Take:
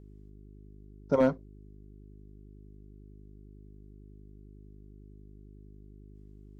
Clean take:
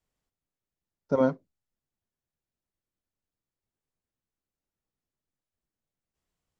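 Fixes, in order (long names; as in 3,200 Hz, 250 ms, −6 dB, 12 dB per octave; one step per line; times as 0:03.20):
clipped peaks rebuilt −15 dBFS
hum removal 51 Hz, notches 8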